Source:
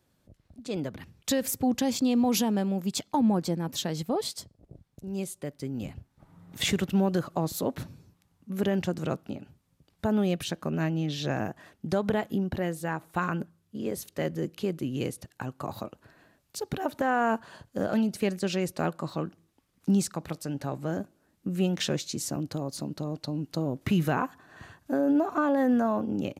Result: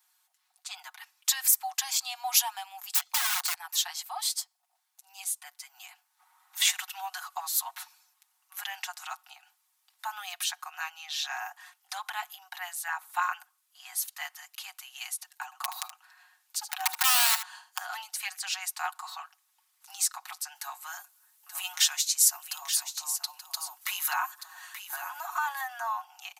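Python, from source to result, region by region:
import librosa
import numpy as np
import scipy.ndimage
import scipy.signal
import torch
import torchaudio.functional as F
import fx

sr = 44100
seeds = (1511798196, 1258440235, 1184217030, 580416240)

y = fx.chain(x, sr, fx.peak_eq(hz=530.0, db=-9.5, octaves=0.22),
    fx.overflow_wrap(gain_db=27.0),
    fx.band_squash(depth_pct=40), at=(2.91, 3.54))
y = fx.chain(y, sr, fx.high_shelf(hz=8400.0, db=-4.0),
    fx.overflow_wrap(gain_db=20.0),
    fx.echo_single(ms=76, db=-11.0), at=(15.44, 17.78))
y = fx.chain(y, sr, fx.high_shelf(hz=7100.0, db=10.0),
    fx.notch(hz=760.0, q=12.0),
    fx.echo_single(ms=880, db=-10.0), at=(20.55, 25.61))
y = scipy.signal.sosfilt(scipy.signal.butter(16, 760.0, 'highpass', fs=sr, output='sos'), y)
y = fx.high_shelf(y, sr, hz=6000.0, db=10.5)
y = y + 0.65 * np.pad(y, (int(5.5 * sr / 1000.0), 0))[:len(y)]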